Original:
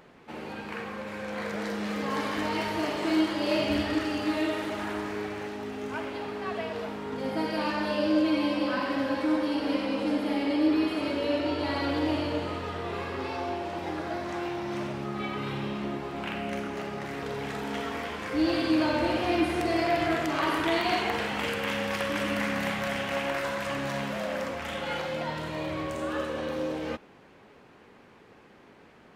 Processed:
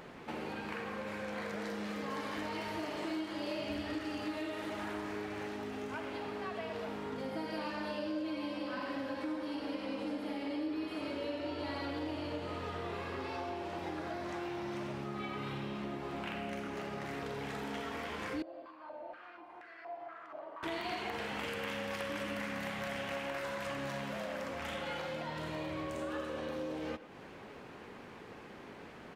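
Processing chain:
downward compressor 4 to 1, threshold −43 dBFS, peak gain reduction 19 dB
far-end echo of a speakerphone 110 ms, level −14 dB
0:18.42–0:20.63: band-pass on a step sequencer 4.2 Hz 620–1,600 Hz
level +4 dB

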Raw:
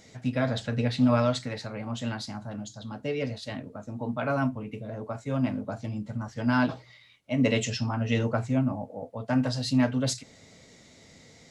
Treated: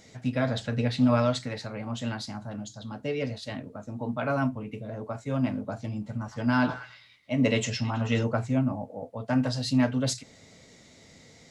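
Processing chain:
0:05.90–0:08.24: echo through a band-pass that steps 108 ms, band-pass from 1,100 Hz, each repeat 0.7 octaves, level −9 dB

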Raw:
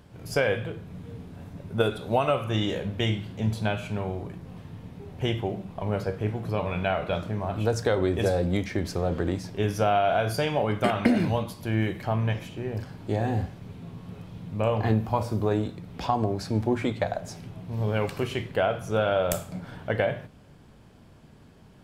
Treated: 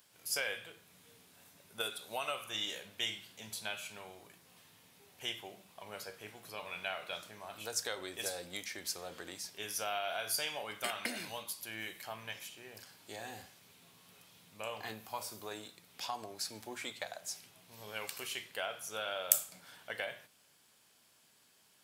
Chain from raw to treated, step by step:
first difference
level +4 dB

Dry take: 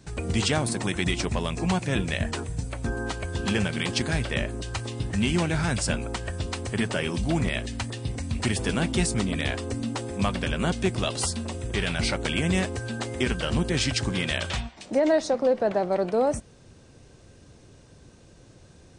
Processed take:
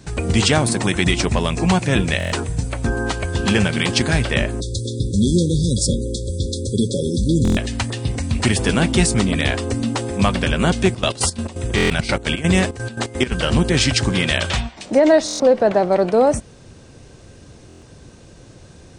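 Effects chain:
0:04.60–0:07.56: time-frequency box erased 570–3,300 Hz
0:10.80–0:13.31: gate pattern ".xxx.x.x.x" 170 BPM −12 dB
buffer that repeats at 0:02.18/0:07.43/0:11.76/0:15.26/0:17.68, samples 1,024, times 5
level +8.5 dB

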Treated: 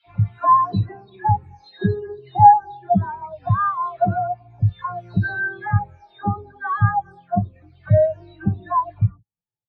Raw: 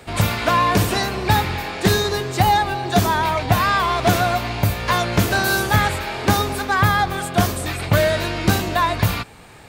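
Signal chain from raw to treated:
every frequency bin delayed by itself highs early, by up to 456 ms
low-pass filter 6,800 Hz 12 dB per octave
every bin expanded away from the loudest bin 2.5 to 1
level +2.5 dB

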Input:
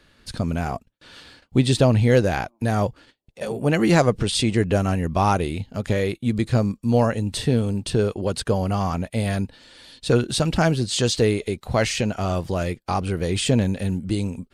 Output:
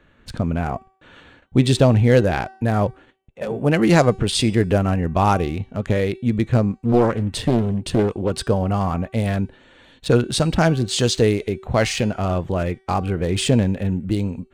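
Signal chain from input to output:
adaptive Wiener filter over 9 samples
hum removal 382.2 Hz, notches 28
0:06.72–0:08.30: highs frequency-modulated by the lows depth 0.77 ms
level +2.5 dB

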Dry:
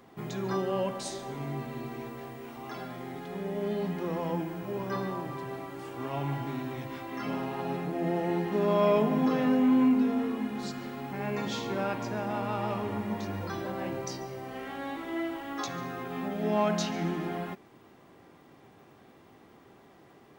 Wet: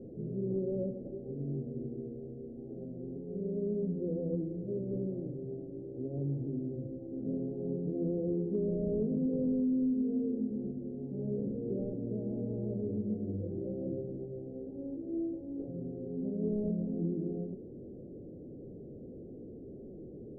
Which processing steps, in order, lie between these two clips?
linear delta modulator 16 kbit/s, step −37.5 dBFS
elliptic low-pass filter 510 Hz, stop band 50 dB
downward compressor, threshold −28 dBFS, peak gain reduction 7.5 dB

